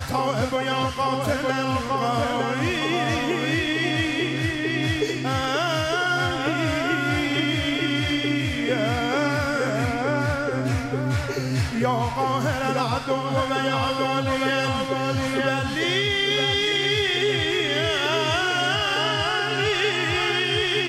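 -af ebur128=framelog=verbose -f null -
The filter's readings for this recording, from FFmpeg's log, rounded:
Integrated loudness:
  I:         -22.7 LUFS
  Threshold: -32.7 LUFS
Loudness range:
  LRA:         2.9 LU
  Threshold: -42.7 LUFS
  LRA low:   -24.0 LUFS
  LRA high:  -21.0 LUFS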